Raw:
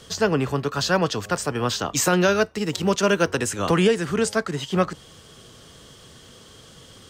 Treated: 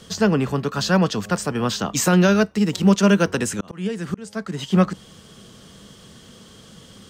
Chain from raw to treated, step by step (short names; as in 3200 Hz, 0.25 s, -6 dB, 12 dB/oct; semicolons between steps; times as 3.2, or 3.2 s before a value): bell 200 Hz +10.5 dB 0.49 oct; 3.38–4.59 auto swell 0.613 s